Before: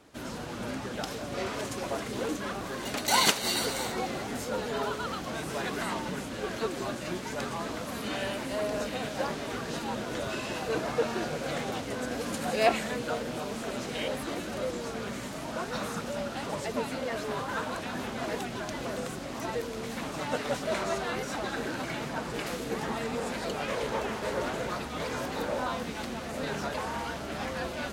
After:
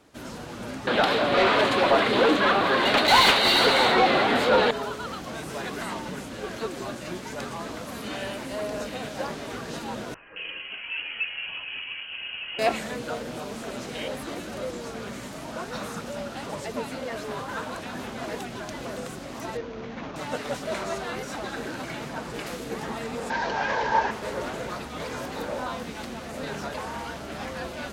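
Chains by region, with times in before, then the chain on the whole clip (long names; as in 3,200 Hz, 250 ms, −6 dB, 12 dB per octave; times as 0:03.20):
0:00.87–0:04.71: high shelf with overshoot 4,800 Hz −6 dB, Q 3 + mid-hump overdrive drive 26 dB, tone 1,800 Hz, clips at −5.5 dBFS
0:10.14–0:12.59: high-frequency loss of the air 480 metres + voice inversion scrambler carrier 3,100 Hz + multiband delay without the direct sound lows, highs 220 ms, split 1,500 Hz
0:19.57–0:20.16: running median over 9 samples + Butterworth low-pass 6,600 Hz 72 dB per octave
0:23.30–0:24.11: linear delta modulator 32 kbit/s, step −33.5 dBFS + hollow resonant body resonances 910/1,600 Hz, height 17 dB, ringing for 25 ms
whole clip: no processing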